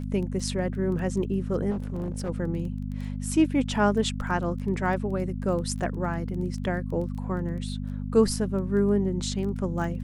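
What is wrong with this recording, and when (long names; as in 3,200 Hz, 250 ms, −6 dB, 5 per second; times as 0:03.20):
surface crackle 13 per second −34 dBFS
mains hum 50 Hz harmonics 5 −32 dBFS
0:01.70–0:02.30: clipping −26.5 dBFS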